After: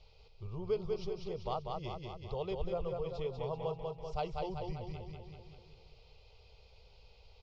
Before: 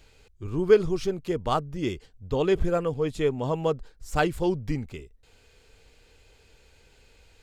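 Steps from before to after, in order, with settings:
elliptic low-pass filter 5,200 Hz, stop band 60 dB
phaser with its sweep stopped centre 690 Hz, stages 4
repeating echo 193 ms, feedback 51%, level −4.5 dB
downward compressor 1.5 to 1, threshold −46 dBFS, peak gain reduction 10.5 dB
level −1.5 dB

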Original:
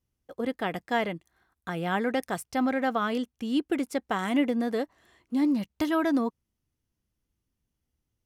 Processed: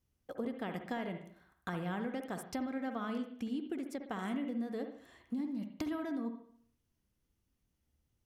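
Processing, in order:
dynamic equaliser 200 Hz, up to +7 dB, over −38 dBFS, Q 0.79
downward compressor 12 to 1, threshold −36 dBFS, peak gain reduction 20.5 dB
convolution reverb, pre-delay 55 ms, DRR 6 dB

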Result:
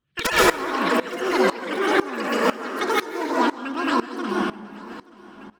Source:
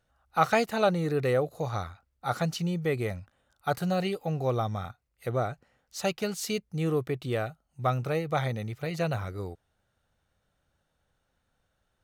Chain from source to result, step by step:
high-shelf EQ 2,400 Hz −7.5 dB
delay with pitch and tempo change per echo 160 ms, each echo +5 semitones, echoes 2
in parallel at +3 dB: output level in coarse steps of 20 dB
on the sum: wrap-around overflow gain 9.5 dB
bass and treble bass +3 dB, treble −6 dB
change of speed 2.15×
on a send: repeating echo 878 ms, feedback 35%, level −17.5 dB
on the sum: dense smooth reverb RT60 1.3 s, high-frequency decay 0.7×, pre-delay 115 ms, DRR −1 dB
tremolo with a ramp in dB swelling 2 Hz, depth 19 dB
level +5 dB

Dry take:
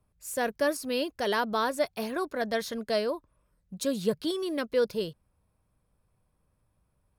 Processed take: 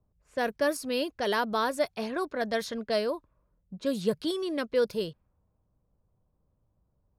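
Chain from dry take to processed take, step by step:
low-pass that shuts in the quiet parts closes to 810 Hz, open at −25.5 dBFS

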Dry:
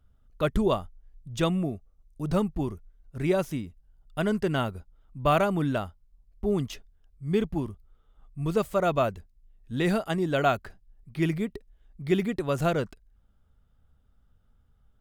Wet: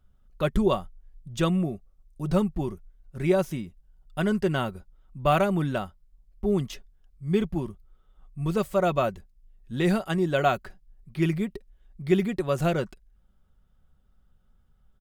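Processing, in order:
comb filter 5.4 ms, depth 39%

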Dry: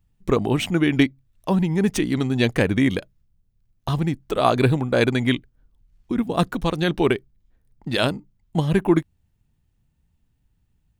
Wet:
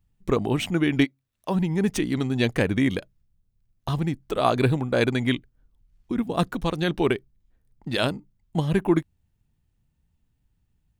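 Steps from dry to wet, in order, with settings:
0:01.04–0:01.54: high-pass filter 720 Hz → 230 Hz 6 dB per octave
level −3 dB

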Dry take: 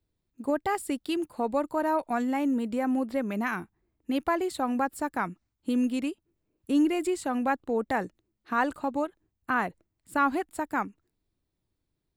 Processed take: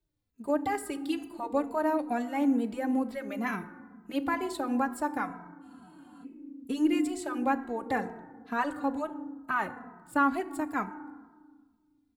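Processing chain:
feedback delay network reverb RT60 1.4 s, low-frequency decay 1.6×, high-frequency decay 0.4×, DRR 10.5 dB
frozen spectrum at 0:05.65, 0.58 s
barber-pole flanger 2.7 ms −2.2 Hz

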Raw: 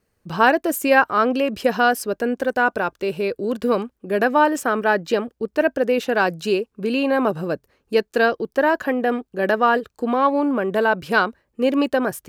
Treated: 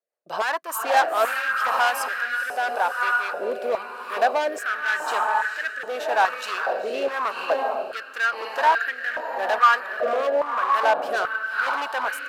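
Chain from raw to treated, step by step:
noise gate −42 dBFS, range −17 dB
feedback delay with all-pass diffusion 484 ms, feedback 43%, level −5 dB
hard clipping −16.5 dBFS, distortion −9 dB
rotating-speaker cabinet horn 5 Hz, later 0.9 Hz, at 0:00.73
high-pass on a step sequencer 2.4 Hz 620–1,600 Hz
level −2 dB

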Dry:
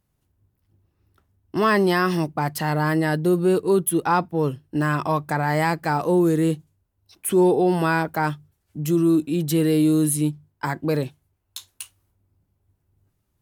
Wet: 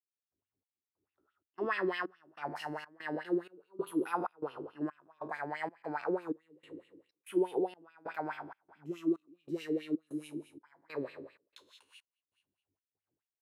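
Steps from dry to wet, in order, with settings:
peak hold with a decay on every bin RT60 1.17 s
noise gate with hold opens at −57 dBFS
gate pattern ".xxx..xxx" 95 BPM −24 dB
LFO wah 4.7 Hz 290–2,900 Hz, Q 3.5
level −8 dB

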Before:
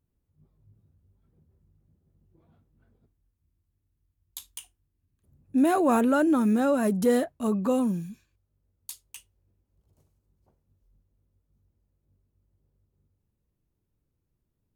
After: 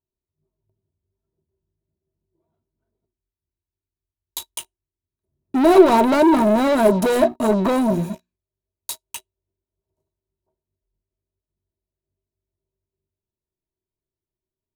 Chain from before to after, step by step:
mains-hum notches 60/120/180/240/300/360 Hz
leveller curve on the samples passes 5
hollow resonant body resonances 380/640/930/3,900 Hz, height 16 dB, ringing for 65 ms
level −6 dB

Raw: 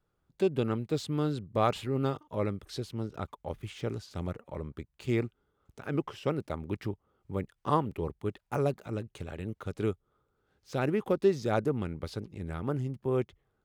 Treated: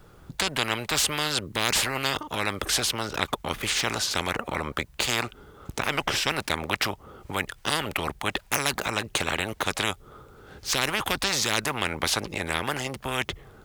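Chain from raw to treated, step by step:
every bin compressed towards the loudest bin 10 to 1
level +8.5 dB

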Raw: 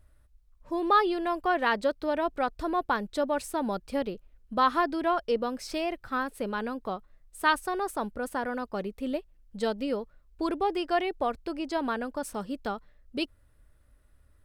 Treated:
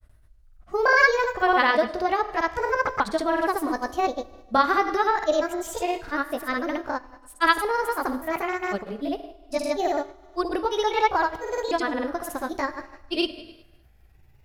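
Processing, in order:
pitch shifter swept by a sawtooth +7 semitones, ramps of 1,453 ms
four-comb reverb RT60 1 s, combs from 27 ms, DRR 11.5 dB
granular cloud, pitch spread up and down by 0 semitones
level +7 dB

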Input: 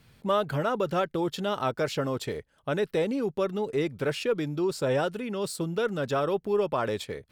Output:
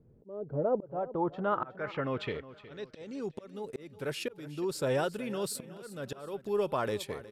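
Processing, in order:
low-pass filter sweep 430 Hz → 12,000 Hz, 0:00.43–0:03.71
volume swells 486 ms
repeating echo 365 ms, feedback 39%, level −16.5 dB
level −3.5 dB

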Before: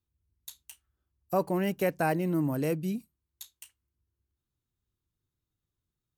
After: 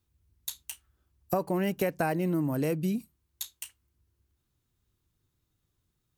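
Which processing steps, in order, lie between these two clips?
downward compressor, threshold −34 dBFS, peak gain reduction 12 dB
level +8.5 dB

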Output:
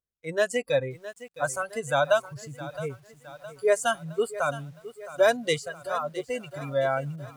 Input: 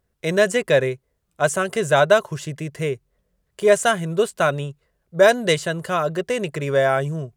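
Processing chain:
noise reduction from a noise print of the clip's start 19 dB
feedback echo at a low word length 664 ms, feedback 55%, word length 7 bits, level −15 dB
level −6.5 dB

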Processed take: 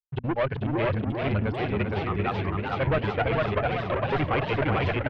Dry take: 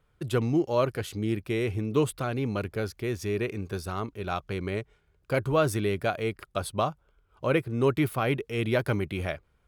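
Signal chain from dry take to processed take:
spectral dynamics exaggerated over time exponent 1.5
gate pattern "x.x.xxxx" 130 BPM −60 dB
single-tap delay 856 ms −4 dB
noise gate −44 dBFS, range −21 dB
tempo change 1.9×
asymmetric clip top −26 dBFS
leveller curve on the samples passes 3
low-pass filter 3,000 Hz 24 dB per octave
parametric band 270 Hz −6 dB 1.9 octaves
mains-hum notches 60/120/180/240 Hz
feedback echo with a swinging delay time 384 ms, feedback 79%, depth 199 cents, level −6 dB

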